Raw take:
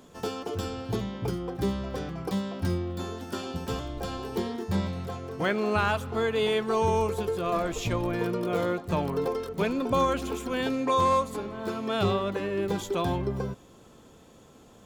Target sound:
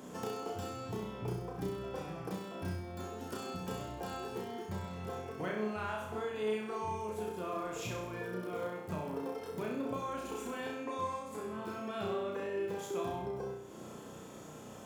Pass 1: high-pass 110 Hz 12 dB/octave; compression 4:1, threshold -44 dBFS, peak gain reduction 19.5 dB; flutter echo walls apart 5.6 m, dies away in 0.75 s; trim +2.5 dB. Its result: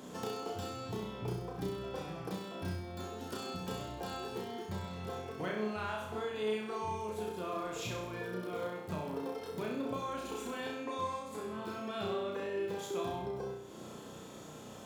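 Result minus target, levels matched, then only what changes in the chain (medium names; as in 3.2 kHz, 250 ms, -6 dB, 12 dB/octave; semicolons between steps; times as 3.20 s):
4 kHz band +3.5 dB
add after high-pass: peaking EQ 3.9 kHz -6 dB 0.65 oct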